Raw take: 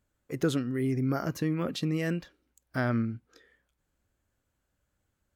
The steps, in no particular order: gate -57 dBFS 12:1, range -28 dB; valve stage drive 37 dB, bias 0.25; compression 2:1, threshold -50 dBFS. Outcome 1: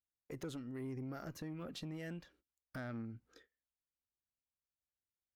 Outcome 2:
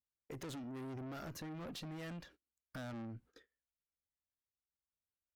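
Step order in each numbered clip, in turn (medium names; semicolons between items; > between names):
gate > compression > valve stage; valve stage > gate > compression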